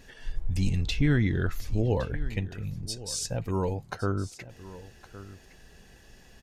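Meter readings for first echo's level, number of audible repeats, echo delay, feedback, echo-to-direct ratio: -16.5 dB, 1, 1.113 s, no steady repeat, -16.5 dB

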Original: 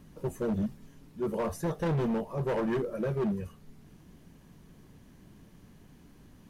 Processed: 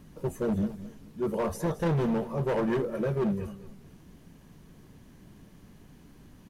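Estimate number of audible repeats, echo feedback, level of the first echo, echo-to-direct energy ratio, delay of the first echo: 2, 27%, -14.5 dB, -14.0 dB, 0.217 s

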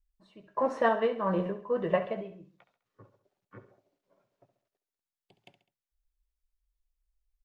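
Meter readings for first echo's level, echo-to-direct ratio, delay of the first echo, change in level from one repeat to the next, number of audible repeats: -12.5 dB, -11.5 dB, 68 ms, -6.5 dB, 3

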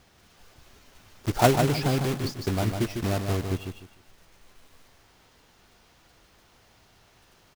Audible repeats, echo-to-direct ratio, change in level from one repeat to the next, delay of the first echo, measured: 3, -5.5 dB, -12.5 dB, 0.151 s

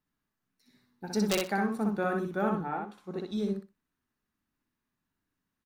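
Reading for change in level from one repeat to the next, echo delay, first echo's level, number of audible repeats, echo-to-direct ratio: -15.5 dB, 62 ms, -3.0 dB, 3, -3.0 dB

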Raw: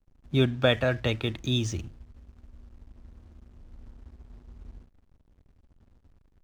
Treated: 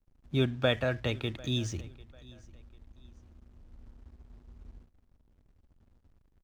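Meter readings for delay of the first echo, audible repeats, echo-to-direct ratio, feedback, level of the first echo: 0.746 s, 2, -22.0 dB, 32%, -22.5 dB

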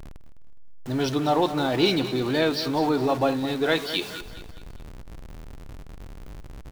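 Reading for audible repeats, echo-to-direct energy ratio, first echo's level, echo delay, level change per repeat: 3, -11.5 dB, -12.5 dB, 0.207 s, -7.5 dB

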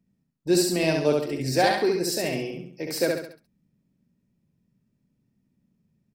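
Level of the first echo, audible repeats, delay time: -3.0 dB, 4, 68 ms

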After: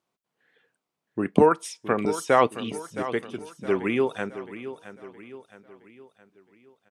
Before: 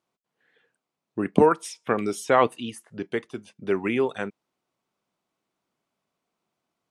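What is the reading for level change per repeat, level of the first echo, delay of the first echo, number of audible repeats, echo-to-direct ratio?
-6.5 dB, -13.0 dB, 0.667 s, 4, -12.0 dB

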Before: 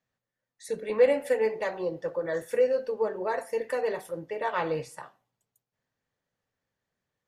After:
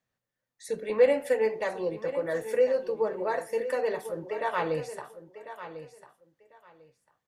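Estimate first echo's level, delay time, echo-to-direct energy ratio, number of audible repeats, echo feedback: -12.5 dB, 1.047 s, -12.5 dB, 2, 19%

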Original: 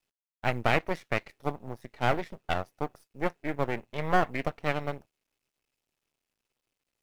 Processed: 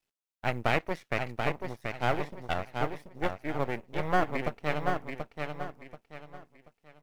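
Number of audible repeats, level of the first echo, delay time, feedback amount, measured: 3, -5.0 dB, 0.733 s, 31%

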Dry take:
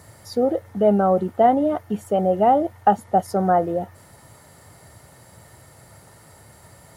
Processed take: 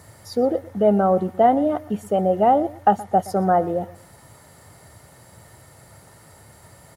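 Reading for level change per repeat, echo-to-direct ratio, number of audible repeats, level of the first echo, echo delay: -12.0 dB, -19.0 dB, 2, -19.5 dB, 0.122 s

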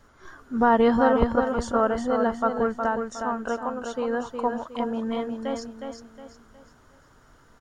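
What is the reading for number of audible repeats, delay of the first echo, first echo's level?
4, 0.363 s, -6.0 dB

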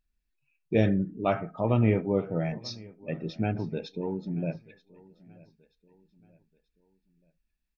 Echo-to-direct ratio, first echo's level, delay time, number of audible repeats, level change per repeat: -21.5 dB, -22.5 dB, 0.932 s, 2, -8.0 dB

